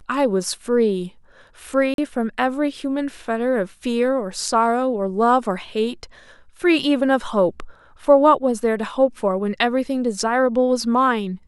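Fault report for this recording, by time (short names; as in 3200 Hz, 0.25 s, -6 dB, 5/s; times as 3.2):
1.94–1.98 gap 42 ms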